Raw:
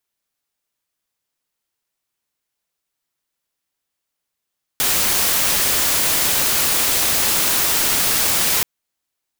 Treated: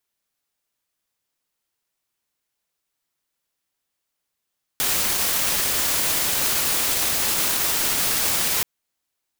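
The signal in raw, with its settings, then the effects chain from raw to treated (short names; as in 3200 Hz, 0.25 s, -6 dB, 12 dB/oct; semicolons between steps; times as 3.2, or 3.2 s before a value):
noise white, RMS -17.5 dBFS 3.83 s
limiter -12 dBFS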